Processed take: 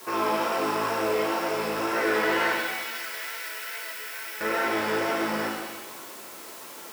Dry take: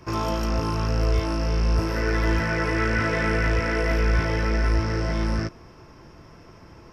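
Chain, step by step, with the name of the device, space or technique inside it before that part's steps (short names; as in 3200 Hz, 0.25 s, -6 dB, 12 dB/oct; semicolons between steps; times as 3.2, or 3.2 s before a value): tape answering machine (BPF 300–3300 Hz; soft clip -23 dBFS, distortion -16 dB; wow and flutter; white noise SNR 19 dB); 2.52–4.41 differentiator; HPF 300 Hz 6 dB/oct; shimmer reverb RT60 1.3 s, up +7 st, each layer -8 dB, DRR -1 dB; gain +2.5 dB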